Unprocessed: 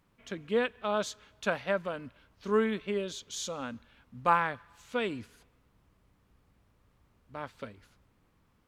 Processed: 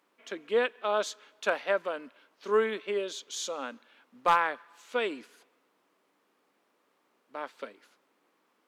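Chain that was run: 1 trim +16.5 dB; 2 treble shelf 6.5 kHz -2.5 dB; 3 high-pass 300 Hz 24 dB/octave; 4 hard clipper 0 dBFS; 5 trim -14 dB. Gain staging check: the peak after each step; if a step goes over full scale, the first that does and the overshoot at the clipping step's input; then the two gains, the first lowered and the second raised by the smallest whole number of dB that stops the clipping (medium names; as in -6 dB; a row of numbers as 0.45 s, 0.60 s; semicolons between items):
+6.0 dBFS, +6.0 dBFS, +5.5 dBFS, 0.0 dBFS, -14.0 dBFS; step 1, 5.5 dB; step 1 +10.5 dB, step 5 -8 dB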